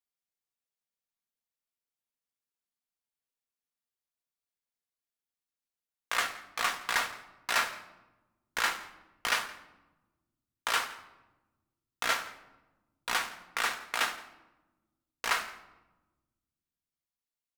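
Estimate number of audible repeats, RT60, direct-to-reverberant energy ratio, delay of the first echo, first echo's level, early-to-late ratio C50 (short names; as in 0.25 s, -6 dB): 1, 1.1 s, 6.5 dB, 0.169 s, -20.5 dB, 13.0 dB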